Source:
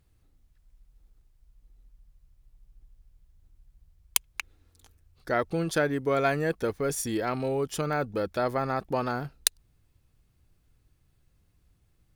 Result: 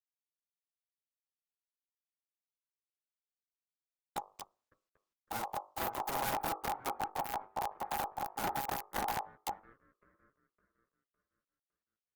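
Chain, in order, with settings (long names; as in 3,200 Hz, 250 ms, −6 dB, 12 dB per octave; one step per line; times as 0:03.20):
comparator with hysteresis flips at −22 dBFS
parametric band 15,000 Hz +9 dB 0.35 octaves
delay with a band-pass on its return 558 ms, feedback 37%, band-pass 570 Hz, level −22 dB
low-pass that shuts in the quiet parts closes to 1,100 Hz, open at −35.5 dBFS
flanger 0.42 Hz, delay 9.8 ms, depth 4.8 ms, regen −2%
wrap-around overflow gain 36.5 dB
mains-hum notches 50/100/150/200/250/300/350/400/450/500 Hz
ring modulation 820 Hz
level +9.5 dB
Opus 20 kbit/s 48,000 Hz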